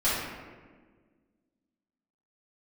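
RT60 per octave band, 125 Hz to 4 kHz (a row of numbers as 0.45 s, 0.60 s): 1.9 s, 2.2 s, 1.8 s, 1.3 s, 1.3 s, 0.85 s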